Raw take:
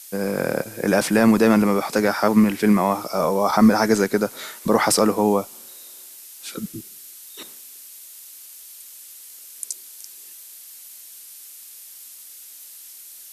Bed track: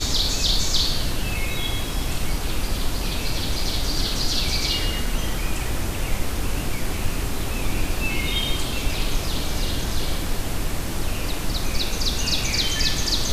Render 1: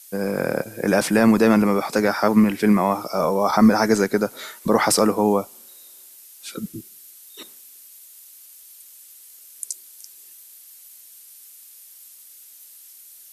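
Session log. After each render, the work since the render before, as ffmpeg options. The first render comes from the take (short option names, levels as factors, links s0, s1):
-af "afftdn=nr=6:nf=-42"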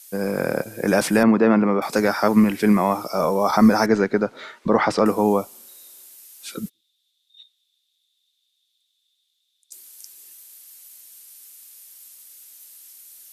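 -filter_complex "[0:a]asettb=1/sr,asplit=3[s0][s1][s2];[s0]atrim=end=1.234[s3];[s1]atrim=start=1.23:end=1.82,asetpts=PTS-STARTPTS,afade=t=in:d=0.004:c=qsin,afade=t=out:st=0.586:d=0.004:c=qsin,highpass=140,lowpass=2100[s4];[s2]atrim=start=1.816[s5];[s3][s4]acrossfade=d=0.004:c1=hsin:c2=qsin[s6];[s6][s5]acrossfade=d=0.004:c1=qsin:c2=hsin,asettb=1/sr,asplit=3[s7][s8][s9];[s7]atrim=end=3.864[s10];[s8]atrim=start=3.86:end=5.06,asetpts=PTS-STARTPTS,afade=t=in:d=0.004:c=qsin,afade=t=out:st=1.196:d=0.004:c=qsin,lowpass=3100[s11];[s9]atrim=start=5.056[s12];[s10][s11]acrossfade=d=0.004:c1=hsin:c2=qsin[s13];[s13][s12]acrossfade=d=0.004:c1=qsin:c2=hsin,asplit=3[s14][s15][s16];[s14]afade=t=out:st=6.68:d=0.02[s17];[s15]bandpass=f=3600:t=q:w=18,afade=t=in:st=6.68:d=0.02,afade=t=out:st=9.71:d=0.02[s18];[s16]afade=t=in:st=9.71:d=0.02[s19];[s17][s18][s19]amix=inputs=3:normalize=0"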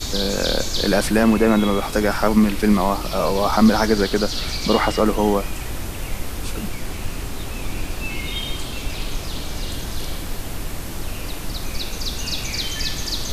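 -filter_complex "[1:a]volume=0.708[s0];[0:a][s0]amix=inputs=2:normalize=0"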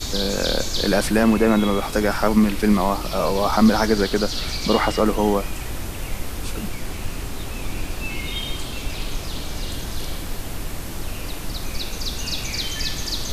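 -af "volume=0.891"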